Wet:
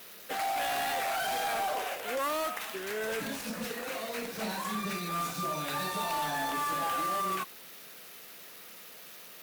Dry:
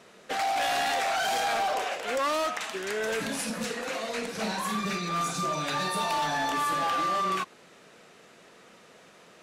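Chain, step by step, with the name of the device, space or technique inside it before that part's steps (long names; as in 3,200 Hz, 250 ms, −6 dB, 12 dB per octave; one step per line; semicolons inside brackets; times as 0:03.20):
budget class-D amplifier (gap after every zero crossing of 0.067 ms; spike at every zero crossing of −31.5 dBFS)
level −4 dB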